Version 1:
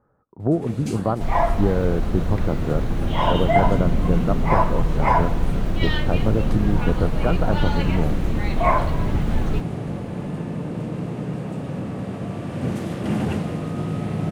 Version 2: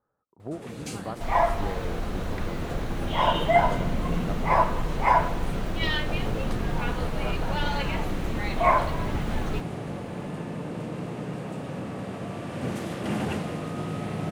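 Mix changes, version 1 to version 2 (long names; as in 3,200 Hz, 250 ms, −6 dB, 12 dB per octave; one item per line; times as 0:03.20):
speech −10.5 dB
master: add low-shelf EQ 350 Hz −8.5 dB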